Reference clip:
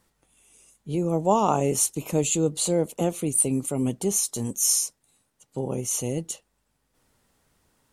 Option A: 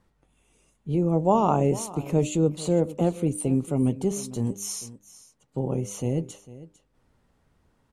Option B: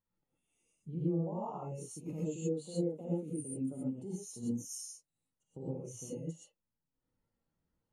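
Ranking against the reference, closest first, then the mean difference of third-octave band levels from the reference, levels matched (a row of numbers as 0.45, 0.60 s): A, B; 5.5, 11.0 dB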